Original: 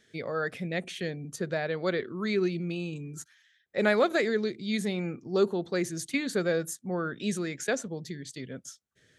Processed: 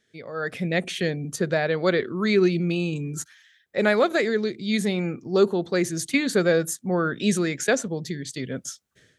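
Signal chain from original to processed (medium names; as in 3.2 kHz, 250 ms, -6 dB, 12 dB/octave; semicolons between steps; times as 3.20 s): level rider gain up to 16 dB; trim -6 dB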